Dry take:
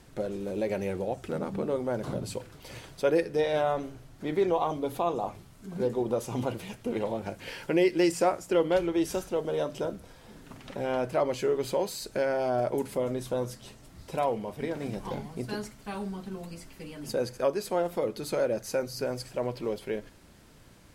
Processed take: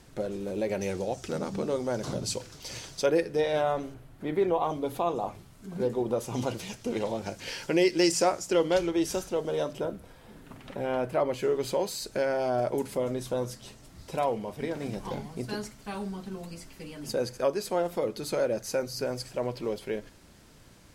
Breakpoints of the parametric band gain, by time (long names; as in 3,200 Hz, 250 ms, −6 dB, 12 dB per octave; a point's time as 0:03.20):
parametric band 5,800 Hz 1.2 octaves
+2.5 dB
from 0:00.81 +13.5 dB
from 0:03.06 +1.5 dB
from 0:03.94 −7.5 dB
from 0:04.64 +0.5 dB
from 0:06.34 +11 dB
from 0:08.91 +5 dB
from 0:09.73 −5 dB
from 0:11.43 +3 dB